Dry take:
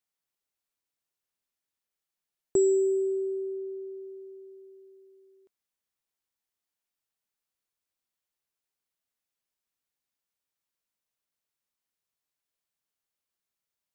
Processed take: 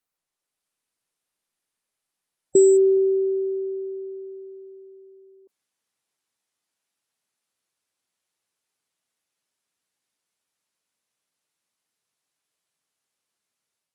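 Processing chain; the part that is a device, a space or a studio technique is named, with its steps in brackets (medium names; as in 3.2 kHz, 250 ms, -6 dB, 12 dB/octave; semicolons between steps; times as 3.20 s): noise-suppressed video call (high-pass 110 Hz 12 dB/octave; spectral gate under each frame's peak -25 dB strong; level rider gain up to 6 dB; trim +2 dB; Opus 32 kbps 48 kHz)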